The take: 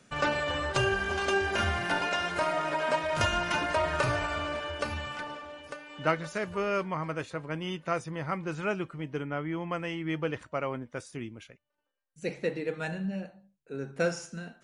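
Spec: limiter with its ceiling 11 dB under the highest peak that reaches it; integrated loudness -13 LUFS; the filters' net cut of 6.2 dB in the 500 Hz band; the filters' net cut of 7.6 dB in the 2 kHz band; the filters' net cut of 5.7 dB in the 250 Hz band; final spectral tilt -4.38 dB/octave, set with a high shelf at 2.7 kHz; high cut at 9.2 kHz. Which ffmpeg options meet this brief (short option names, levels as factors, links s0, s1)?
-af "lowpass=9200,equalizer=f=250:t=o:g=-7,equalizer=f=500:t=o:g=-5.5,equalizer=f=2000:t=o:g=-7.5,highshelf=f=2700:g=-6.5,volume=23.7,alimiter=limit=0.75:level=0:latency=1"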